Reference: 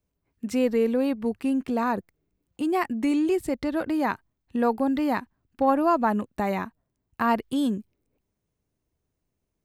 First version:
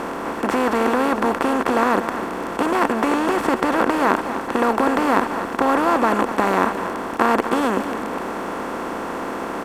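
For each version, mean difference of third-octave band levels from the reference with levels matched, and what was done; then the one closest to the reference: 11.5 dB: per-bin compression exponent 0.2; bell 1400 Hz +6 dB 0.49 oct; on a send: echo 0.246 s -11 dB; on the sum: gain -2.5 dB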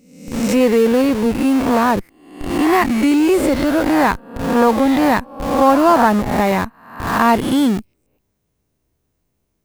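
9.0 dB: spectral swells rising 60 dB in 0.79 s; high shelf 11000 Hz +4 dB; in parallel at -6.5 dB: Schmitt trigger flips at -30 dBFS; on the sum: gain +7 dB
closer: second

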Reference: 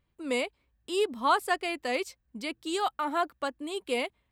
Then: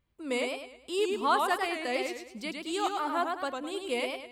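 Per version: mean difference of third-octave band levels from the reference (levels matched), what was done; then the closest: 6.0 dB: warbling echo 0.104 s, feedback 40%, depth 131 cents, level -4 dB; gain -2 dB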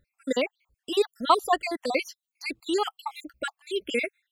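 8.0 dB: random spectral dropouts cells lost 62%; gain +6.5 dB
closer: first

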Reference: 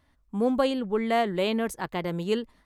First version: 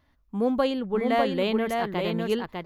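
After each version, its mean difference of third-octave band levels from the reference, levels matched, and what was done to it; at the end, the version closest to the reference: 4.0 dB: bell 8600 Hz -13.5 dB 0.41 oct; echo 0.601 s -4 dB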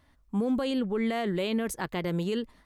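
2.5 dB: dynamic EQ 850 Hz, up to -5 dB, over -38 dBFS, Q 1.3; limiter -23 dBFS, peak gain reduction 10.5 dB; gain +2.5 dB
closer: second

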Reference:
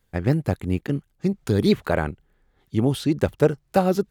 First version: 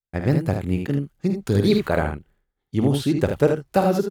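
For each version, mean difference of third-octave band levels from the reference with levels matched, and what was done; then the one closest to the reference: 4.0 dB: expander -50 dBFS; on a send: early reflections 50 ms -9 dB, 78 ms -6.5 dB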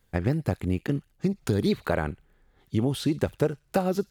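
2.0 dB: compressor 3:1, threshold -24 dBFS, peak gain reduction 9.5 dB; on a send: thin delay 60 ms, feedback 37%, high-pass 2600 Hz, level -16.5 dB; on the sum: gain +1.5 dB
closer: second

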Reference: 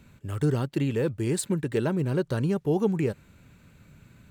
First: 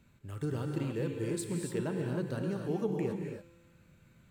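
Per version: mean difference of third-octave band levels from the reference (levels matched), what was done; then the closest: 5.0 dB: resonator 170 Hz, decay 1.5 s, mix 70%; non-linear reverb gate 0.31 s rising, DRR 2.5 dB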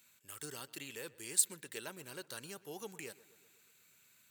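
11.0 dB: differentiator; on a send: darkening echo 0.123 s, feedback 64%, low-pass 3300 Hz, level -20 dB; on the sum: gain +2.5 dB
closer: first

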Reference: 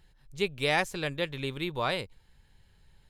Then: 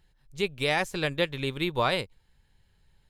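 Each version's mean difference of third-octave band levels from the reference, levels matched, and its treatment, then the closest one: 1.5 dB: limiter -20.5 dBFS, peak gain reduction 7.5 dB; upward expander 1.5:1, over -50 dBFS; gain +7 dB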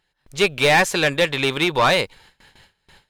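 4.5 dB: gate with hold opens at -49 dBFS; overdrive pedal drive 21 dB, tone 5100 Hz, clips at -13 dBFS; gain +6 dB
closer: first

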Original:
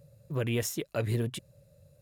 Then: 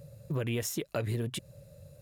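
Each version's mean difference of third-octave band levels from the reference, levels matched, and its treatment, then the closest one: 4.0 dB: compressor 4:1, threshold -38 dBFS, peak gain reduction 11 dB; gain +7 dB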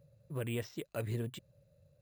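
1.5 dB: careless resampling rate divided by 4×, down filtered, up hold; gain -7 dB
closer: second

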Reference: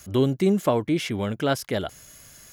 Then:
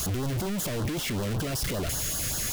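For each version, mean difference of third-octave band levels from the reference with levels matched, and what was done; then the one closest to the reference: 14.5 dB: infinite clipping; low shelf 120 Hz +6.5 dB; LFO notch sine 5.2 Hz 800–2400 Hz; gain -5.5 dB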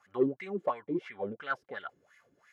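11.0 dB: high shelf 6300 Hz -4 dB; notch comb 320 Hz; wah 2.9 Hz 300–2000 Hz, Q 5.4; in parallel at -7.5 dB: soft clip -27.5 dBFS, distortion -10 dB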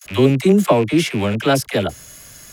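4.5 dB: rattling part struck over -32 dBFS, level -27 dBFS; gate with hold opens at -39 dBFS; dynamic EQ 9200 Hz, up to +3 dB, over -50 dBFS, Q 1.6; dispersion lows, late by 50 ms, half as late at 520 Hz; gain +7.5 dB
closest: third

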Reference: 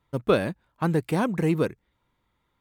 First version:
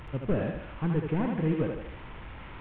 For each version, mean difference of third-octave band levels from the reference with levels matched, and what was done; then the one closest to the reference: 9.0 dB: delta modulation 16 kbps, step -34.5 dBFS; low shelf 110 Hz +11 dB; on a send: thinning echo 77 ms, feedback 53%, high-pass 210 Hz, level -3.5 dB; on the sum: gain -7 dB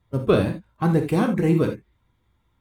4.5 dB: bin magnitudes rounded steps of 15 dB; low shelf 250 Hz +8 dB; non-linear reverb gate 0.1 s flat, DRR 4 dB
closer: second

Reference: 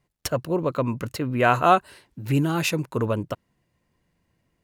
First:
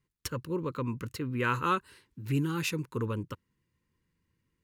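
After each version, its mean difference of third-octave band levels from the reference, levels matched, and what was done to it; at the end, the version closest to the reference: 2.5 dB: Butterworth band-stop 680 Hz, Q 1.6; bell 86 Hz +3 dB; gain -7.5 dB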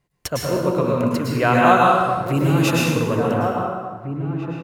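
10.5 dB: outdoor echo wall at 300 m, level -7 dB; plate-style reverb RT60 1.5 s, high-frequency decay 0.7×, pre-delay 95 ms, DRR -4 dB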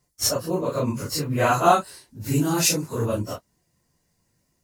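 6.0 dB: phase scrambler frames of 0.1 s; resonant high shelf 4100 Hz +10 dB, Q 1.5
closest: first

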